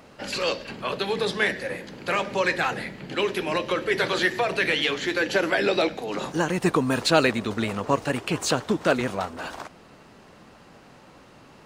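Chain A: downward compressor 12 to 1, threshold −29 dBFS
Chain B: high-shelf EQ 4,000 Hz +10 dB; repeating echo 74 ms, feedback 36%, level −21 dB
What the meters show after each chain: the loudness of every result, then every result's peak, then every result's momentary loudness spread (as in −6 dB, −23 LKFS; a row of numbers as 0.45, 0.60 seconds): −33.5, −23.0 LKFS; −17.0, −2.5 dBFS; 18, 10 LU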